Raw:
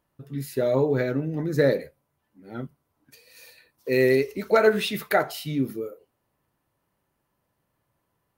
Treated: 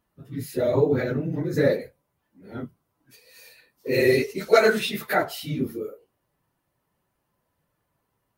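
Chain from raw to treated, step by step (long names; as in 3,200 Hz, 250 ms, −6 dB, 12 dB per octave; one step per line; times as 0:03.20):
random phases in long frames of 50 ms
0:03.93–0:04.78: parametric band 6,500 Hz +4.5 dB → +13 dB 2.4 octaves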